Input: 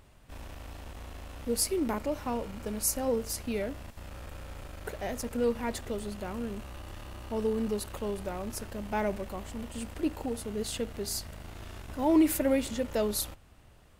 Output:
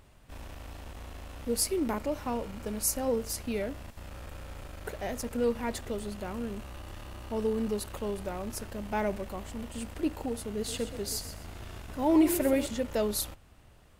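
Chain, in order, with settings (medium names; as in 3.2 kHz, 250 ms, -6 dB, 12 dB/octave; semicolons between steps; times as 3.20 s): 10.54–12.66 s: frequency-shifting echo 127 ms, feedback 30%, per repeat +31 Hz, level -11 dB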